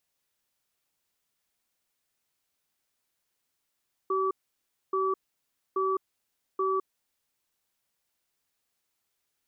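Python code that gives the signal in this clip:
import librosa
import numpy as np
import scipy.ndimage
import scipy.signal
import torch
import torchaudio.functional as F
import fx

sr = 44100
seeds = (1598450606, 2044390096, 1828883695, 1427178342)

y = fx.cadence(sr, length_s=2.98, low_hz=382.0, high_hz=1150.0, on_s=0.21, off_s=0.62, level_db=-27.0)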